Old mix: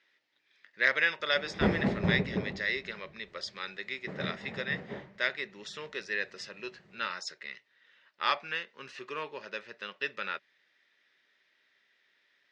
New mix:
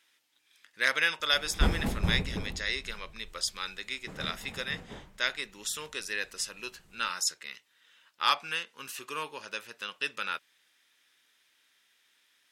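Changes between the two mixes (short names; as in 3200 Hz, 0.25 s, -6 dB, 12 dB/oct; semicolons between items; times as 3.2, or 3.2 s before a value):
speech +3.5 dB; master: remove speaker cabinet 120–4900 Hz, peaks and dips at 130 Hz +7 dB, 200 Hz +6 dB, 390 Hz +8 dB, 590 Hz +8 dB, 1900 Hz +8 dB, 3200 Hz -3 dB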